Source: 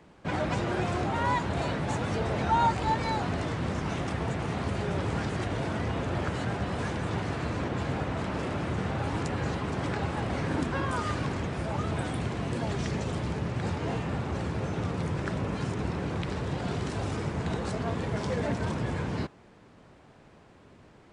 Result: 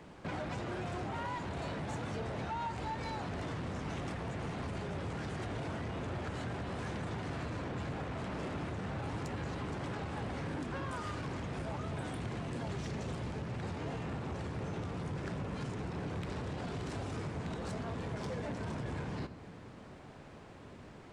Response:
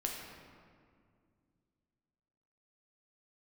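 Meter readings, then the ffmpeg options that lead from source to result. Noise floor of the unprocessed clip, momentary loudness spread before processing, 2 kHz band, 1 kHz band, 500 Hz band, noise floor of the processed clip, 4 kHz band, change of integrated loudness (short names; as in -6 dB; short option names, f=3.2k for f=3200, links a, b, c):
-55 dBFS, 4 LU, -8.5 dB, -10.0 dB, -8.5 dB, -52 dBFS, -8.5 dB, -8.5 dB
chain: -filter_complex "[0:a]acompressor=threshold=-38dB:ratio=4,asoftclip=type=tanh:threshold=-36dB,asplit=2[a][b];[1:a]atrim=start_sample=2205[c];[b][c]afir=irnorm=-1:irlink=0,volume=-8dB[d];[a][d]amix=inputs=2:normalize=0"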